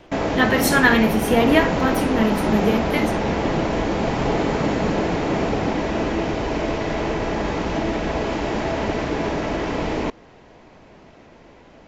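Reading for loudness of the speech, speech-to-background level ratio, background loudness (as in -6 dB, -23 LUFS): -20.0 LUFS, 3.0 dB, -23.0 LUFS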